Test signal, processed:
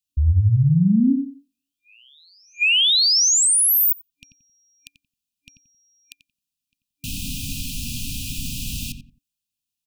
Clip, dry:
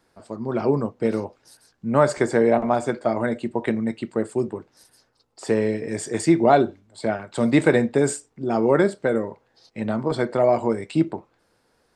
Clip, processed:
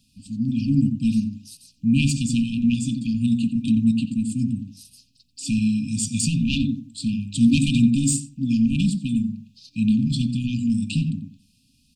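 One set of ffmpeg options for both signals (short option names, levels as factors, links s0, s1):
-filter_complex "[0:a]asplit=2[s0][s1];[s1]adelay=89,lowpass=f=1200:p=1,volume=0.562,asplit=2[s2][s3];[s3]adelay=89,lowpass=f=1200:p=1,volume=0.26,asplit=2[s4][s5];[s5]adelay=89,lowpass=f=1200:p=1,volume=0.26[s6];[s0][s2][s4][s6]amix=inputs=4:normalize=0,aeval=exprs='0.668*sin(PI/2*2.24*val(0)/0.668)':c=same,afftfilt=real='re*(1-between(b*sr/4096,280,2400))':imag='im*(1-between(b*sr/4096,280,2400))':win_size=4096:overlap=0.75,volume=0.668"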